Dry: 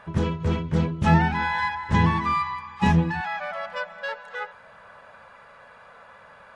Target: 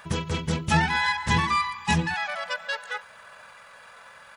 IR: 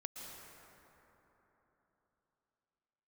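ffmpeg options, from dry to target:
-af "crystalizer=i=8:c=0,atempo=1.5,volume=-4.5dB"

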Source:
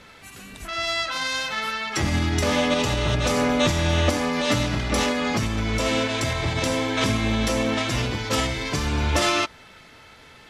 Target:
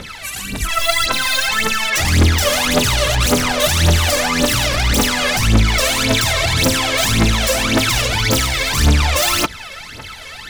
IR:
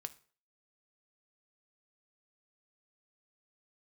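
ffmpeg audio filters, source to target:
-filter_complex "[0:a]asettb=1/sr,asplit=3[a][b][c];[a]atrim=end=8.374[d];[b]atrim=start=8.37:end=8.77,asetpts=PTS-STARTPTS,afade=t=in:d=0.004:c=qsin,afade=t=out:st=0.396:d=0.004:c=qsin,asoftclip=type=hard:threshold=-29.5dB[e];[c]atrim=start=8.766[f];[d][e]acrossfade=d=0.004:c1=hsin:c2=qsin[g];[g][f]acrossfade=d=0.004:c1=qsin:c2=hsin,highshelf=f=2k:g=7.5,asplit=2[h][i];[i]aeval=exprs='0.531*sin(PI/2*7.08*val(0)/0.531)':c=same,volume=-11dB[j];[h][j]amix=inputs=2:normalize=0,aphaser=in_gain=1:out_gain=1:delay=1.9:decay=0.77:speed=1.8:type=triangular,volume=-4.5dB"

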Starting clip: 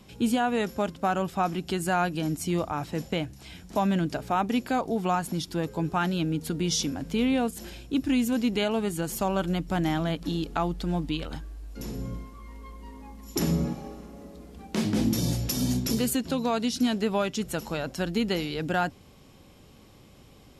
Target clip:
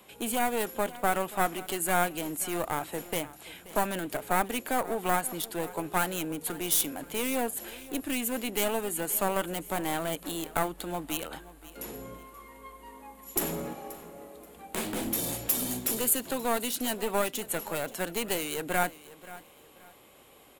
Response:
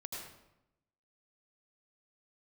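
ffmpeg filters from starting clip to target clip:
-filter_complex "[0:a]acrossover=split=360 4400:gain=0.126 1 0.1[a][b][c];[a][b][c]amix=inputs=3:normalize=0,aeval=exprs='clip(val(0),-1,0.0168)':c=same,aexciter=amount=13.5:drive=6.5:freq=7.8k,asplit=2[d][e];[e]aecho=0:1:530|1060:0.126|0.0352[f];[d][f]amix=inputs=2:normalize=0,volume=2.5dB"

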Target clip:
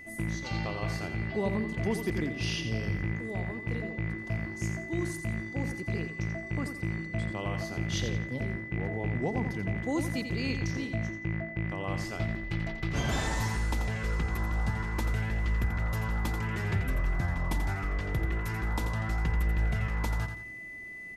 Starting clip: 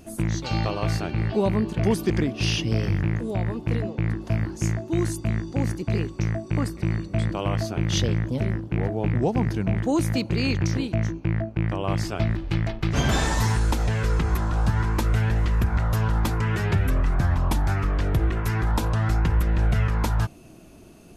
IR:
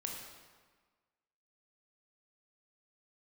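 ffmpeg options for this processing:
-af "aeval=exprs='val(0)+0.0158*sin(2*PI*2000*n/s)':c=same,aecho=1:1:86|172|258|344:0.398|0.131|0.0434|0.0143,volume=-8.5dB"

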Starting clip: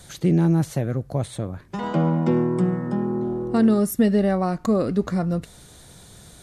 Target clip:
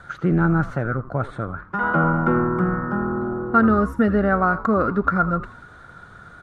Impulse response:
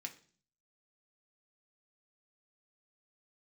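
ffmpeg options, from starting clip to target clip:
-filter_complex "[0:a]lowpass=f=1.4k:t=q:w=12,aemphasis=mode=production:type=75fm,asplit=4[a][b][c][d];[b]adelay=82,afreqshift=-140,volume=-14.5dB[e];[c]adelay=164,afreqshift=-280,volume=-23.9dB[f];[d]adelay=246,afreqshift=-420,volume=-33.2dB[g];[a][e][f][g]amix=inputs=4:normalize=0"

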